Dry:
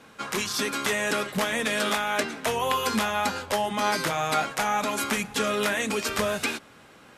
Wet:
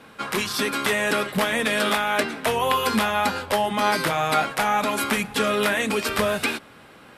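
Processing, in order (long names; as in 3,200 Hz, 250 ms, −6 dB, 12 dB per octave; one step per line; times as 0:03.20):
parametric band 6,500 Hz −7.5 dB 0.57 octaves
level +4 dB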